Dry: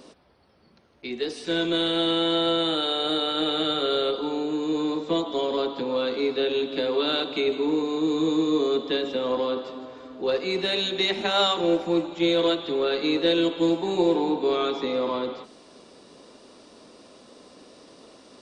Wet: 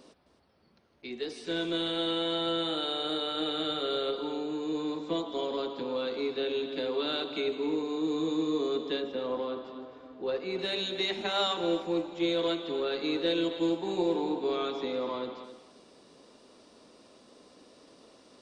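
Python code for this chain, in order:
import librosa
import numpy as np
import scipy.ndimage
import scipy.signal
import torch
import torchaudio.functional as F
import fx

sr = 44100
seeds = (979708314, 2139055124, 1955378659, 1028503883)

y = fx.lowpass(x, sr, hz=2500.0, slope=6, at=(9.0, 10.59))
y = y + 10.0 ** (-12.5 / 20.0) * np.pad(y, (int(263 * sr / 1000.0), 0))[:len(y)]
y = y * 10.0 ** (-7.0 / 20.0)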